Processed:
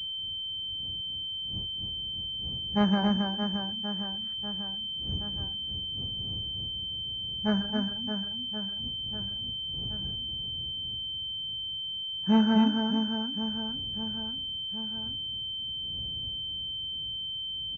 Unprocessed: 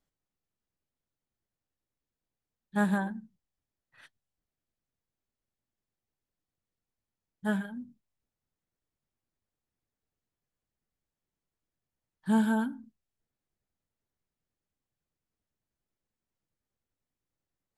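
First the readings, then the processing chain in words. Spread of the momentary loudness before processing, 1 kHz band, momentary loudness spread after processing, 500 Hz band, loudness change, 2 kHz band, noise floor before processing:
17 LU, +4.5 dB, 7 LU, +5.0 dB, +0.5 dB, -1.5 dB, under -85 dBFS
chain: wind noise 98 Hz -48 dBFS; high-pass 64 Hz; reverse bouncing-ball echo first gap 270 ms, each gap 1.3×, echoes 5; class-D stage that switches slowly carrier 3.1 kHz; trim +3 dB

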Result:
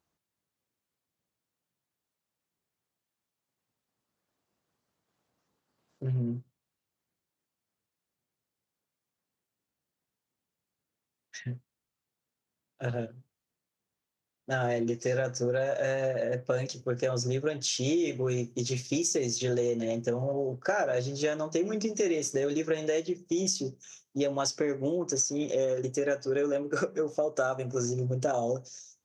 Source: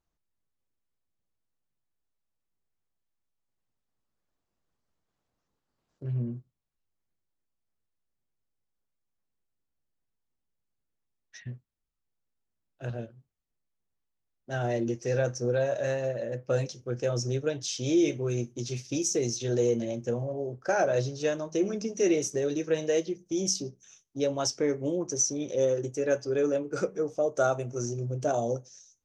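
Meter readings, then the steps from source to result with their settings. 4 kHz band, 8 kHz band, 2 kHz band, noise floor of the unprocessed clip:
+1.0 dB, -0.5 dB, +1.5 dB, -83 dBFS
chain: high-pass 110 Hz; dynamic bell 1.5 kHz, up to +4 dB, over -44 dBFS, Q 0.82; compression 5:1, threshold -31 dBFS, peak gain reduction 11.5 dB; trim +5 dB

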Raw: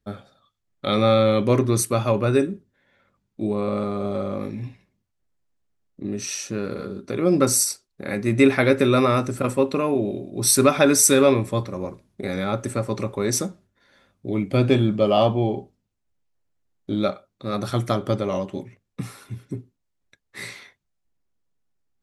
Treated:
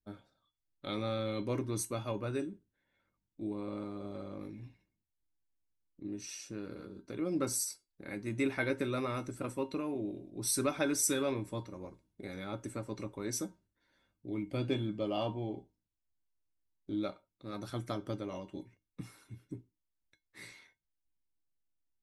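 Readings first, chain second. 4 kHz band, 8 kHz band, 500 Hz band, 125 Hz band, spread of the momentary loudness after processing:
-15.0 dB, -14.5 dB, -17.0 dB, -16.5 dB, 17 LU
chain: bass shelf 73 Hz +10.5 dB; harmonic-percussive split harmonic -4 dB; feedback comb 310 Hz, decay 0.18 s, harmonics odd, mix 80%; trim -2.5 dB

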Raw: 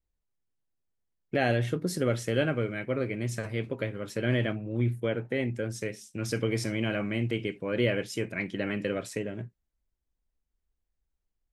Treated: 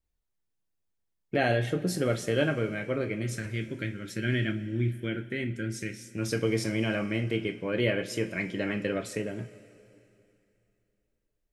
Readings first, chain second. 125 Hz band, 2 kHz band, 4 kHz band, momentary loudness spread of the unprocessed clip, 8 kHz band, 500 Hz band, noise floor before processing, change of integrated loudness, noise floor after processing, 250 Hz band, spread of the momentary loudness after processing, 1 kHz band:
-0.5 dB, +1.0 dB, +1.0 dB, 7 LU, +1.0 dB, 0.0 dB, -83 dBFS, 0.0 dB, -79 dBFS, +0.5 dB, 8 LU, +0.5 dB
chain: time-frequency box 3.22–6.03 s, 400–1300 Hz -12 dB; two-slope reverb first 0.22 s, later 2.9 s, from -19 dB, DRR 6.5 dB

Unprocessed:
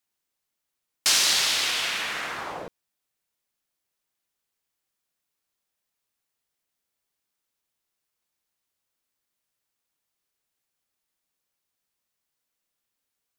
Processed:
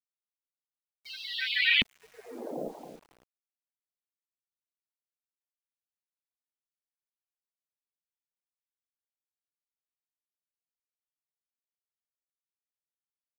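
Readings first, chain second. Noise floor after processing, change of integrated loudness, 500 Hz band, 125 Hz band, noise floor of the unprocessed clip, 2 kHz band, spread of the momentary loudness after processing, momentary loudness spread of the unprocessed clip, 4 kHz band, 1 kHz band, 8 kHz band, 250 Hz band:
under -85 dBFS, -5.5 dB, -1.0 dB, 0.0 dB, -83 dBFS, -1.0 dB, 21 LU, 16 LU, -7.0 dB, -15.5 dB, -35.0 dB, +3.0 dB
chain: local Wiener filter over 41 samples; short-mantissa float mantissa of 4-bit; peaking EQ 83 Hz -10.5 dB 1.1 oct; doubling 33 ms -6 dB; feedback delay 277 ms, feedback 16%, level -9.5 dB; loudest bins only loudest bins 32; graphic EQ 125/250/1000/2000/4000/8000 Hz +6/+11/-3/+9/+12/-5 dB; LFO low-pass saw up 0.55 Hz 230–2400 Hz; bit crusher 9-bit; trim -3.5 dB

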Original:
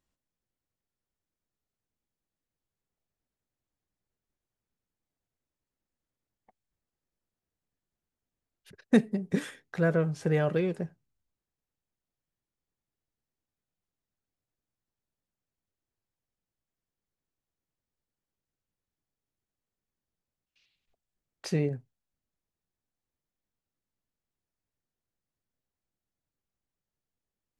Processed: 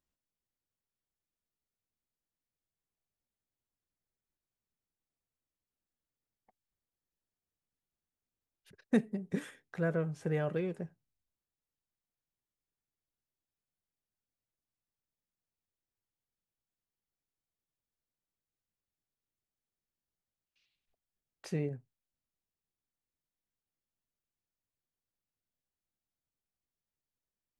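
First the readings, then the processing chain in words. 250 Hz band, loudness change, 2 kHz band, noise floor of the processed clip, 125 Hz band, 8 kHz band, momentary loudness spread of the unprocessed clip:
-6.5 dB, -6.5 dB, -7.0 dB, under -85 dBFS, -6.5 dB, -8.0 dB, 14 LU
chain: dynamic bell 4.6 kHz, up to -5 dB, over -59 dBFS, Q 1.6; trim -6.5 dB

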